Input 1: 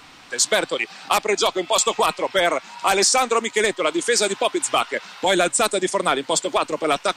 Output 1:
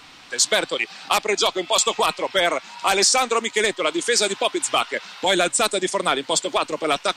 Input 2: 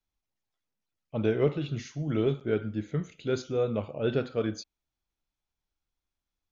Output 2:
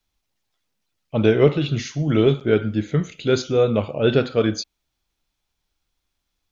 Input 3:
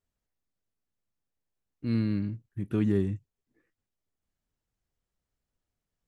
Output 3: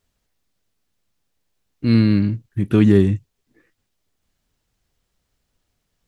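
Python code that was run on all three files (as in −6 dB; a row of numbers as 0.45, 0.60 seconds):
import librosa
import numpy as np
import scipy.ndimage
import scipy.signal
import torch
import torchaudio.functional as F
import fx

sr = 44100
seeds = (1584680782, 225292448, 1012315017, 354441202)

y = fx.peak_eq(x, sr, hz=3800.0, db=4.0, octaves=1.6)
y = y * 10.0 ** (-22 / 20.0) / np.sqrt(np.mean(np.square(y)))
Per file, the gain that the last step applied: −1.5, +10.0, +13.0 decibels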